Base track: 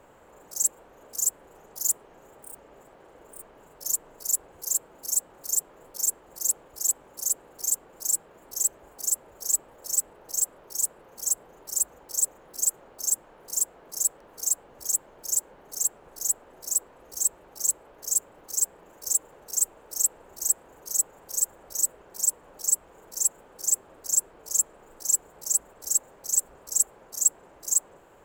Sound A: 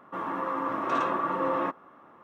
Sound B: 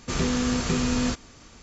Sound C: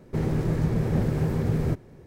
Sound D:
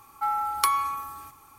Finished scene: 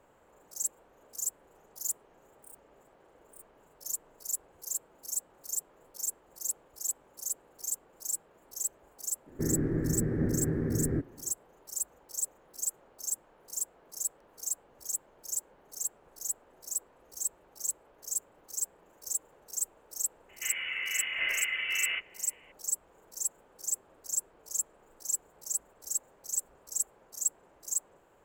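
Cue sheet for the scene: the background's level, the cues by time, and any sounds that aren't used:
base track -8.5 dB
9.26 s: add C -7.5 dB + FFT filter 190 Hz 0 dB, 290 Hz +11 dB, 550 Hz -1 dB, 930 Hz -9 dB, 1.8 kHz +6 dB, 3 kHz -23 dB, 5.6 kHz -15 dB
20.29 s: add A -4.5 dB + frequency inversion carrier 3.2 kHz
not used: B, D

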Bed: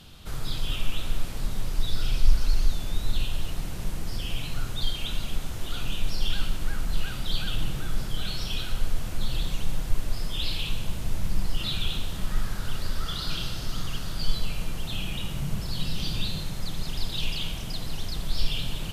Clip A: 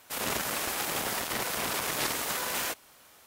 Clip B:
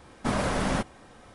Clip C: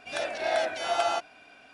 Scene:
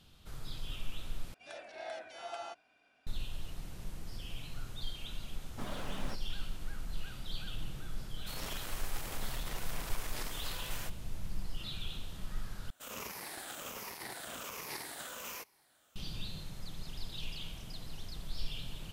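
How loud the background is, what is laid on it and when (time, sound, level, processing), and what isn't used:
bed -12.5 dB
1.34 s: replace with C -16.5 dB
5.33 s: add B -16.5 dB + tracing distortion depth 0.039 ms
8.16 s: add A -13 dB
12.70 s: replace with A -13.5 dB + drifting ripple filter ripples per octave 0.82, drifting -1.3 Hz, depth 8 dB

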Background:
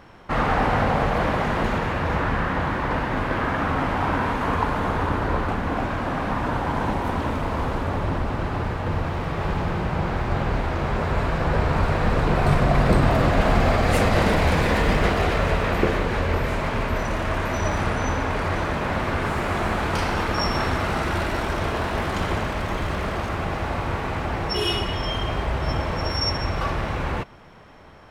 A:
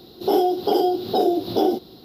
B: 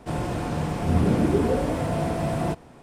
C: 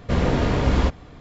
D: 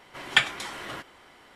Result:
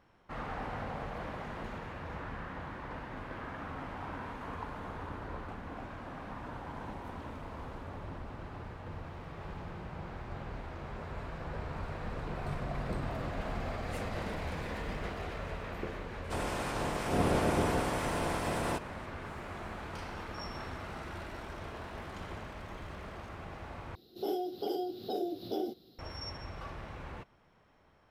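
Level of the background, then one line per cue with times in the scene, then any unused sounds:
background -18.5 dB
16.24 s: add B -8 dB + spectral peaks clipped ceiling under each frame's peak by 16 dB
23.95 s: replace with A -15 dB + peaking EQ 970 Hz -8.5 dB 0.51 oct
not used: C, D

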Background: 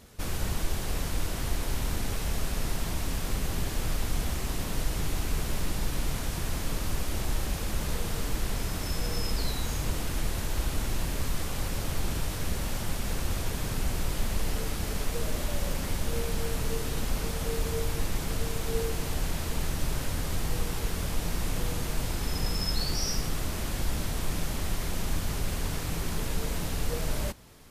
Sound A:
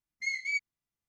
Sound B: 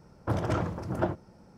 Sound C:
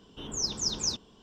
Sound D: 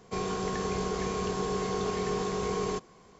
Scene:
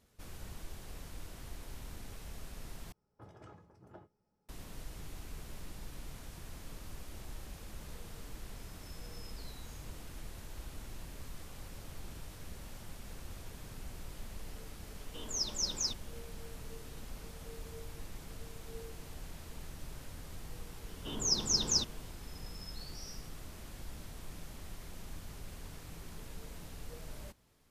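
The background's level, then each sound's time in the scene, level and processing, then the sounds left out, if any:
background -16.5 dB
2.92 s: replace with B -14.5 dB + feedback comb 420 Hz, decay 0.16 s, mix 80%
14.97 s: add C -4.5 dB + bass shelf 370 Hz -7.5 dB
20.88 s: add C + band-stop 2.4 kHz
not used: A, D

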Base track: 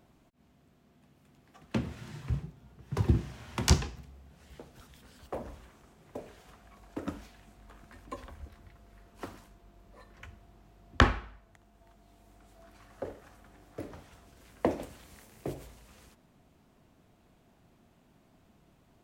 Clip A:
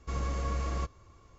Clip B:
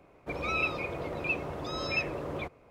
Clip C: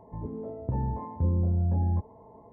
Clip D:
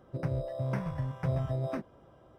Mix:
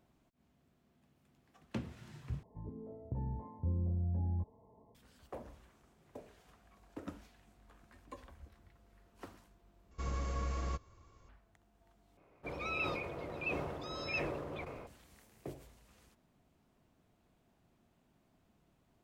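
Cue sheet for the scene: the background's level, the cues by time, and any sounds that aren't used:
base track -8.5 dB
2.43 s: replace with C -15 dB + bass shelf 440 Hz +6 dB
9.91 s: replace with A -5 dB
12.17 s: replace with B -8 dB + decay stretcher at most 33 dB/s
not used: D

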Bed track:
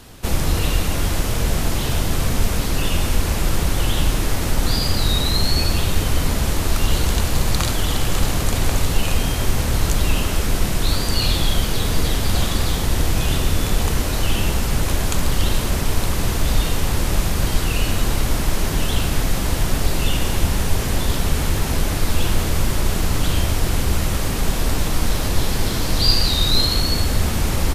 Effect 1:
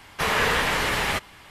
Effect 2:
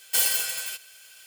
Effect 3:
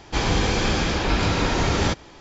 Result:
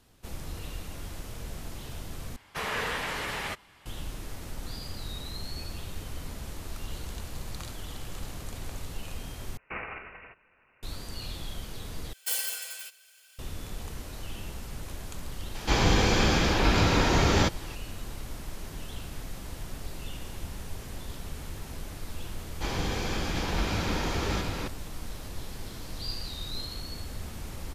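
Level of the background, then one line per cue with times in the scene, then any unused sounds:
bed track -19.5 dB
2.36 s: replace with 1 -9.5 dB
9.57 s: replace with 2 -15 dB + careless resampling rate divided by 8×, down none, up filtered
12.13 s: replace with 2 -8 dB + high-pass 320 Hz 24 dB/octave
15.55 s: add 3 -1.5 dB + tape noise reduction on one side only encoder only
22.48 s: add 3 -10 dB + delay 735 ms -3 dB

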